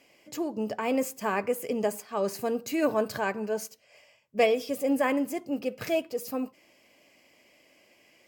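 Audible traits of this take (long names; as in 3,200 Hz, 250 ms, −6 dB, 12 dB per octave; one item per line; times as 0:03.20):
background noise floor −63 dBFS
spectral slope −3.5 dB per octave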